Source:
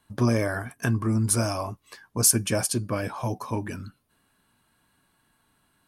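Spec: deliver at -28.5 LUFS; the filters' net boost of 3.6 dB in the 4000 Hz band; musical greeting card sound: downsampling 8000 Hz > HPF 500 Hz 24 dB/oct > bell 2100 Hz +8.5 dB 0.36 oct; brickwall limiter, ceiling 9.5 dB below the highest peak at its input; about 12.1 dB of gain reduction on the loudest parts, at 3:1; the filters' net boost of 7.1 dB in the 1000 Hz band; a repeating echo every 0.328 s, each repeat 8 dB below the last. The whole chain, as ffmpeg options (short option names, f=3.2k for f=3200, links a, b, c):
-af "equalizer=f=1k:t=o:g=8,equalizer=f=4k:t=o:g=4.5,acompressor=threshold=-31dB:ratio=3,alimiter=limit=-22.5dB:level=0:latency=1,aecho=1:1:328|656|984|1312|1640:0.398|0.159|0.0637|0.0255|0.0102,aresample=8000,aresample=44100,highpass=f=500:w=0.5412,highpass=f=500:w=1.3066,equalizer=f=2.1k:t=o:w=0.36:g=8.5,volume=9dB"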